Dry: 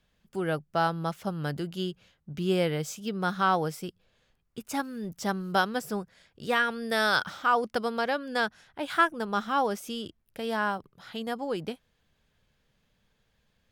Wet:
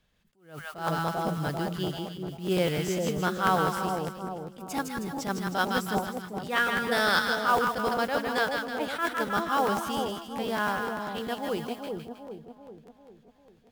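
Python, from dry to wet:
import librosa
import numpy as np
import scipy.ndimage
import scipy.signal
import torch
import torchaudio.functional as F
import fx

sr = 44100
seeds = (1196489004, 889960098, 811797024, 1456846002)

y = fx.mod_noise(x, sr, seeds[0], snr_db=22)
y = fx.echo_split(y, sr, split_hz=890.0, low_ms=392, high_ms=158, feedback_pct=52, wet_db=-4)
y = fx.buffer_crackle(y, sr, first_s=0.76, period_s=0.1, block=512, kind='repeat')
y = fx.attack_slew(y, sr, db_per_s=140.0)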